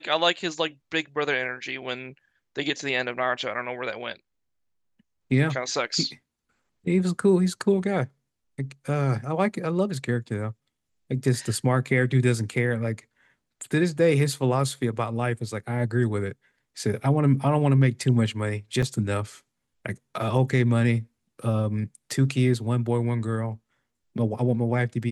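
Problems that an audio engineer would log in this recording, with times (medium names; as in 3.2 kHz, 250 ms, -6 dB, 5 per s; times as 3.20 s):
18.82–18.83 s: dropout 5.8 ms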